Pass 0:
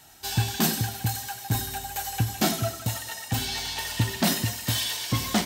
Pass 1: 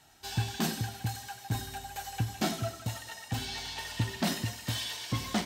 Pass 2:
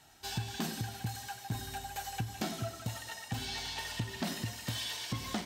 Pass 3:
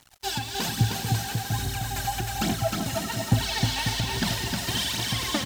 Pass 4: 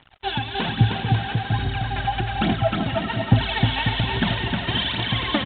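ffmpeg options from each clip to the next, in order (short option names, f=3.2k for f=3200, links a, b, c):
-af "highshelf=f=9.8k:g=-12,volume=-6dB"
-af "acompressor=threshold=-33dB:ratio=4"
-filter_complex "[0:a]aphaser=in_gain=1:out_gain=1:delay=3.9:decay=0.72:speed=1.2:type=triangular,acrusher=bits=7:mix=0:aa=0.5,asplit=2[a][b];[b]aecho=0:1:310|542.5|716.9|847.7|945.7:0.631|0.398|0.251|0.158|0.1[c];[a][c]amix=inputs=2:normalize=0,volume=6dB"
-af "aresample=8000,aresample=44100,volume=5.5dB"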